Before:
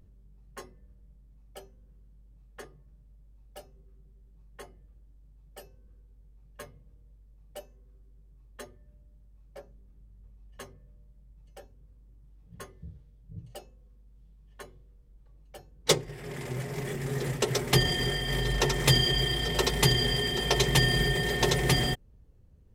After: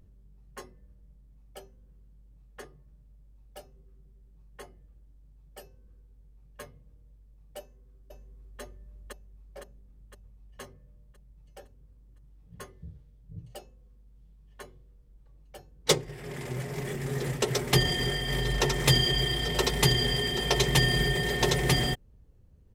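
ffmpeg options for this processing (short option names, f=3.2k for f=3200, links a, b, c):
-filter_complex "[0:a]asplit=2[a][b];[b]afade=t=in:st=7.59:d=0.01,afade=t=out:st=8.61:d=0.01,aecho=0:1:510|1020|1530|2040|2550|3060|3570|4080:1|0.55|0.3025|0.166375|0.0915063|0.0503284|0.0276806|0.0152244[c];[a][c]amix=inputs=2:normalize=0"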